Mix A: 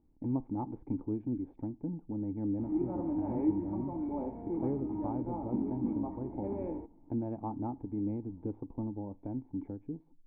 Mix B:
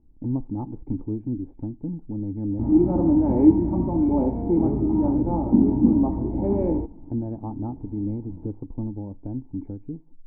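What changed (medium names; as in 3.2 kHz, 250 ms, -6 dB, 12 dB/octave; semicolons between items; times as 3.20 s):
background +10.0 dB; master: add tilt EQ -3 dB/octave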